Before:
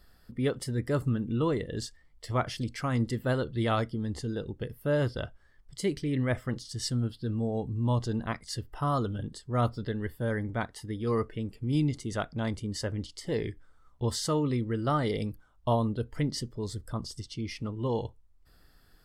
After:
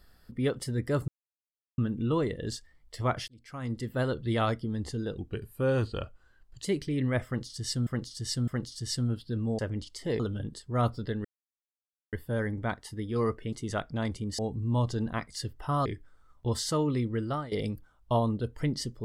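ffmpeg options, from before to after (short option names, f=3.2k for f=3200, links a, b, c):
-filter_complex "[0:a]asplit=14[a][b][c][d][e][f][g][h][i][j][k][l][m][n];[a]atrim=end=1.08,asetpts=PTS-STARTPTS,afade=t=out:st=1.076:d=0.004:c=hsin,apad=pad_dur=0.7[o];[b]atrim=start=1.08:end=2.58,asetpts=PTS-STARTPTS,afade=t=in:d=0.004:c=hsin,afade=t=out:st=1.496:d=0.004:c=hsin[p];[c]atrim=start=2.58:end=4.484,asetpts=PTS-STARTPTS,afade=t=in:d=0.83[q];[d]atrim=start=4.48:end=5.8,asetpts=PTS-STARTPTS,asetrate=39690,aresample=44100[r];[e]atrim=start=5.796:end=7.022[s];[f]atrim=start=6.408:end=7.022[t];[g]atrim=start=6.408:end=7.522[u];[h]atrim=start=12.808:end=13.422[v];[i]atrim=start=8.988:end=10.04,asetpts=PTS-STARTPTS,afade=t=out:st=1.048:d=0.004:c=hsin,apad=pad_dur=0.88[w];[j]atrim=start=10.04:end=11.442,asetpts=PTS-STARTPTS,afade=t=in:d=0.004:c=hsin[x];[k]atrim=start=11.948:end=12.812[y];[l]atrim=start=7.518:end=8.992[z];[m]atrim=start=13.418:end=15.08,asetpts=PTS-STARTPTS,afade=t=out:st=1.342:d=0.32:silence=0.1[aa];[n]atrim=start=15.08,asetpts=PTS-STARTPTS,afade=t=in:d=0.004:c=hsin:silence=0.1[ab];[o][p][q]concat=n=3:v=0:a=1[ac];[ac][r]acrossfade=d=0.004:c1=hsin:c2=hsin[ad];[ad][s]acrossfade=d=0.004:c1=hsin:c2=hsin[ae];[ae][t]acrossfade=d=0.004:c1=hsin:c2=hsin[af];[af][u]acrossfade=d=0.004:c1=hsin:c2=hsin[ag];[ag][v]acrossfade=d=0.004:c1=hsin:c2=hsin[ah];[w][x]concat=n=2:v=0:a=1[ai];[ah][ai]acrossfade=d=0.004:c1=hsin:c2=hsin[aj];[aj][y]acrossfade=d=0.004:c1=hsin:c2=hsin[ak];[ak][z]acrossfade=d=0.004:c1=hsin:c2=hsin[al];[aa][ab]concat=n=2:v=0:a=1[am];[al][am]acrossfade=d=0.004:c1=hsin:c2=hsin"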